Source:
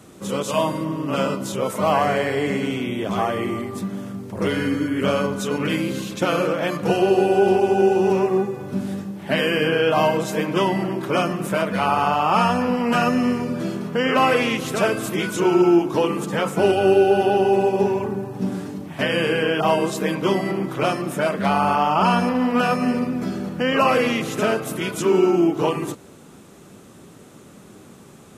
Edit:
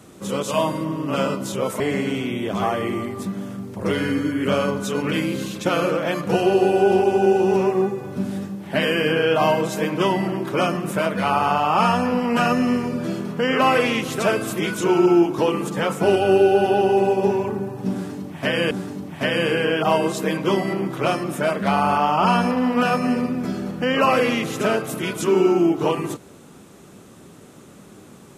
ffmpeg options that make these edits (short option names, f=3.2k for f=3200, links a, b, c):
-filter_complex "[0:a]asplit=3[a][b][c];[a]atrim=end=1.802[d];[b]atrim=start=2.358:end=19.272[e];[c]atrim=start=18.488[f];[d][e]acrossfade=d=0.004:c1=hsin:c2=hsin[g];[g][f]acrossfade=d=0.004:c1=hsin:c2=hsin"